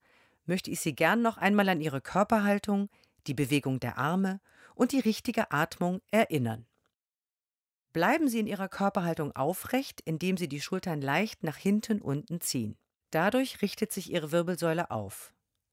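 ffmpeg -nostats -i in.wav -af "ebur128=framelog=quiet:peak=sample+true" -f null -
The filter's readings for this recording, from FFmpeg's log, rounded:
Integrated loudness:
  I:         -29.9 LUFS
  Threshold: -40.3 LUFS
Loudness range:
  LRA:         3.2 LU
  Threshold: -50.6 LUFS
  LRA low:   -31.8 LUFS
  LRA high:  -28.5 LUFS
Sample peak:
  Peak:      -10.3 dBFS
True peak:
  Peak:      -10.3 dBFS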